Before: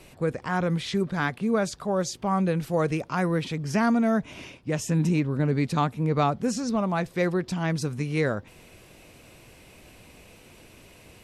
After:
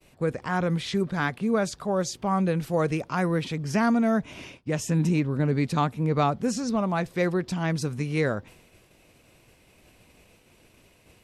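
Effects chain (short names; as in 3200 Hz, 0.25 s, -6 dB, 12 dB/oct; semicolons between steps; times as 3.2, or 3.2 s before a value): expander -44 dBFS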